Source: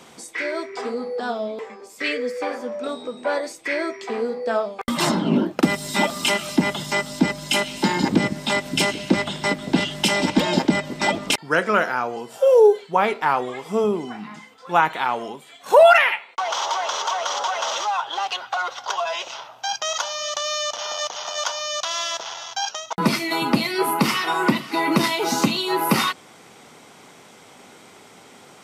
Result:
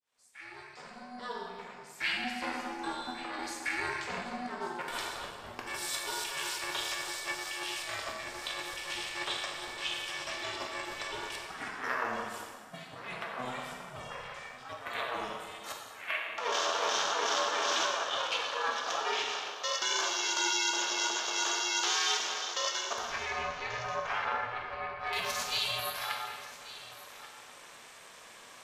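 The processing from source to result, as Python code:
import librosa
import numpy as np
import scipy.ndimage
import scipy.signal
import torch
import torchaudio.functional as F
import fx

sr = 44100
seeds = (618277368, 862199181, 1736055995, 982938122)

y = fx.fade_in_head(x, sr, length_s=2.69)
y = fx.lowpass(y, sr, hz=1500.0, slope=12, at=(23.07, 25.13))
y = fx.over_compress(y, sr, threshold_db=-25.0, ratio=-0.5)
y = scipy.signal.sosfilt(scipy.signal.butter(2, 830.0, 'highpass', fs=sr, output='sos'), y)
y = y + 10.0 ** (-16.0 / 20.0) * np.pad(y, (int(1137 * sr / 1000.0), 0))[:len(y)]
y = fx.rev_plate(y, sr, seeds[0], rt60_s=1.7, hf_ratio=0.8, predelay_ms=0, drr_db=-1.5)
y = y * np.sin(2.0 * np.pi * 250.0 * np.arange(len(y)) / sr)
y = F.gain(torch.from_numpy(y), -7.0).numpy()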